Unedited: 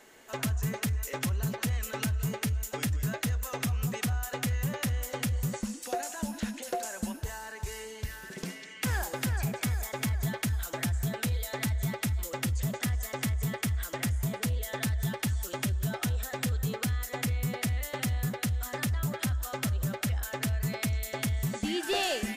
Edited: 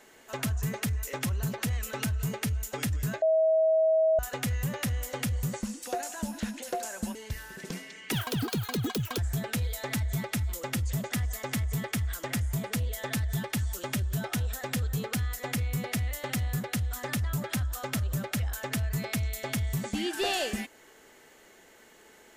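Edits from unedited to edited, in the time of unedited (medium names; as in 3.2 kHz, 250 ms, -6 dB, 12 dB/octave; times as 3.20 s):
3.22–4.19 s: bleep 640 Hz -20 dBFS
7.15–7.88 s: delete
8.85–10.88 s: speed 191%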